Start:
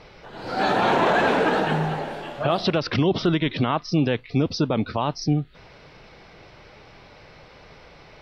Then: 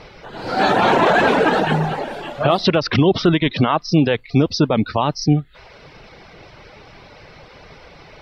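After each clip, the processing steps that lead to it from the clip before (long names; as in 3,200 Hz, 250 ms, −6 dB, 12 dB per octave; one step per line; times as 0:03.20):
reverb reduction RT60 0.57 s
level +6.5 dB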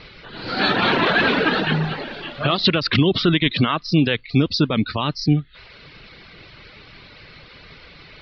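drawn EQ curve 280 Hz 0 dB, 820 Hz −9 dB, 1,200 Hz 0 dB, 4,400 Hz +7 dB, 8,200 Hz −25 dB
level −1.5 dB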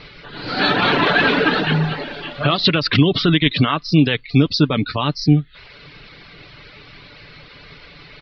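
comb filter 6.9 ms, depth 32%
level +1.5 dB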